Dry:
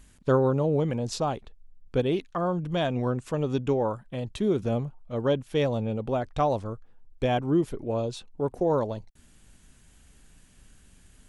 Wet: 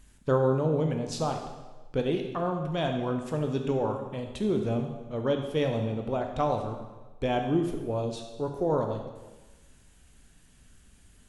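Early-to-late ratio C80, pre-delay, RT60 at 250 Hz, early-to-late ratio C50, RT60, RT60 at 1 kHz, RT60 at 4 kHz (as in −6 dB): 7.5 dB, 7 ms, 1.1 s, 6.0 dB, 1.2 s, 1.2 s, 1.1 s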